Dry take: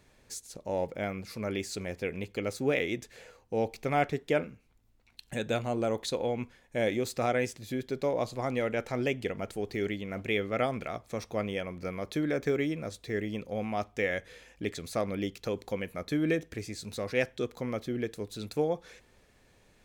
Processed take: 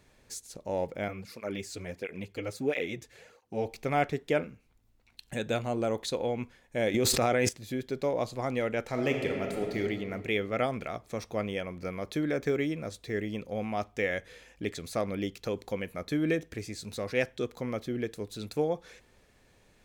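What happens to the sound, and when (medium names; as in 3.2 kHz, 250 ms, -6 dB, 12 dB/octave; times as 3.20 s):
1.08–3.66 s: cancelling through-zero flanger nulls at 1.5 Hz, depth 5.6 ms
6.94–7.49 s: level flattener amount 100%
8.86–9.78 s: reverb throw, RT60 2.2 s, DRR 2 dB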